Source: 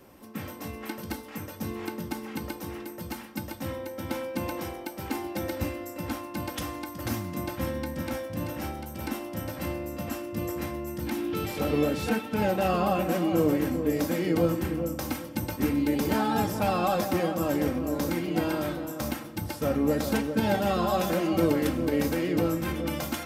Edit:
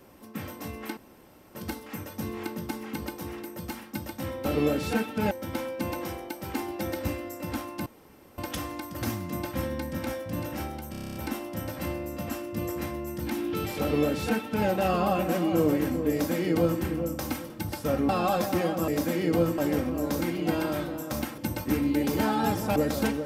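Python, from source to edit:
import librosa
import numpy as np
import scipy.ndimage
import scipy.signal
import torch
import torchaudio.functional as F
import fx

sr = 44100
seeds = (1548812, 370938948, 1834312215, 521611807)

y = fx.edit(x, sr, fx.insert_room_tone(at_s=0.97, length_s=0.58),
    fx.insert_room_tone(at_s=6.42, length_s=0.52),
    fx.stutter(start_s=8.95, slice_s=0.03, count=9),
    fx.duplicate(start_s=11.61, length_s=0.86, to_s=3.87),
    fx.duplicate(start_s=13.91, length_s=0.7, to_s=17.47),
    fx.swap(start_s=15.3, length_s=1.38, other_s=19.27, other_length_s=0.59), tone=tone)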